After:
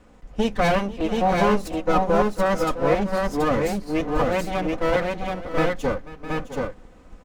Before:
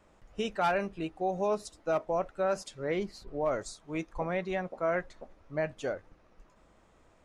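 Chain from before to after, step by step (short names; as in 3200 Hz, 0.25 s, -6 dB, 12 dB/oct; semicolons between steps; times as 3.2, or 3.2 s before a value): minimum comb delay 4 ms; low shelf 480 Hz +9 dB; tapped delay 0.492/0.66/0.729 s -17/-13/-3 dB; gain +7 dB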